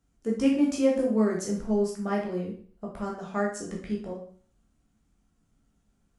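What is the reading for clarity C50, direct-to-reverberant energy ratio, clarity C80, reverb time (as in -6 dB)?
5.0 dB, -3.0 dB, 10.0 dB, 0.50 s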